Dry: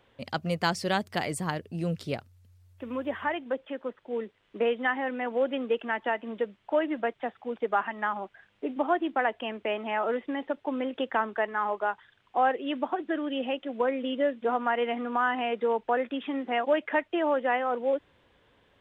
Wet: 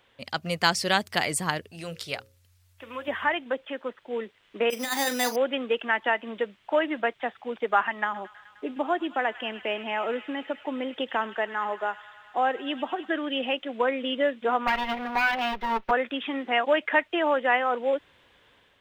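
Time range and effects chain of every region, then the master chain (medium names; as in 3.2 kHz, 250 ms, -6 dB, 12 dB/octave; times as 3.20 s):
1.71–3.08 s: peaking EQ 220 Hz -10.5 dB 2.1 oct + hum notches 60/120/180/240/300/360/420/480/540 Hz
4.70–5.36 s: compressor with a negative ratio -30 dBFS, ratio -0.5 + doubling 40 ms -11 dB + careless resampling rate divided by 8×, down none, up hold
8.04–13.10 s: peaking EQ 1.5 kHz -6 dB 2.2 oct + feedback echo behind a high-pass 103 ms, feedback 80%, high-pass 1.9 kHz, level -11.5 dB
14.67–15.91 s: comb filter that takes the minimum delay 5.3 ms + peaking EQ 8.1 kHz -12.5 dB 1.3 oct
whole clip: level rider gain up to 4 dB; tilt shelf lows -5 dB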